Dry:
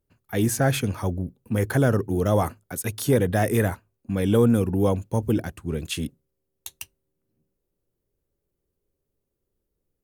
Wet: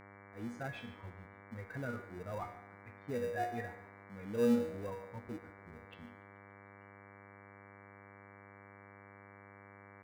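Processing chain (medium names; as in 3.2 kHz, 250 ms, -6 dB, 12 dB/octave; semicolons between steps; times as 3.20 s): expander on every frequency bin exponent 2; level-controlled noise filter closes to 620 Hz, open at -22 dBFS; Chebyshev low-pass 1.9 kHz, order 2; bass shelf 470 Hz -8 dB; feedback comb 240 Hz, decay 0.52 s, harmonics all, mix 90%; in parallel at -12 dB: sample-and-hold 41×; on the sum: mains buzz 100 Hz, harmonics 23, -60 dBFS -2 dB/octave; frequency-shifting echo 144 ms, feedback 57%, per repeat +78 Hz, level -23.5 dB; on a send at -15 dB: reverberation, pre-delay 3 ms; on the sum: trim +4 dB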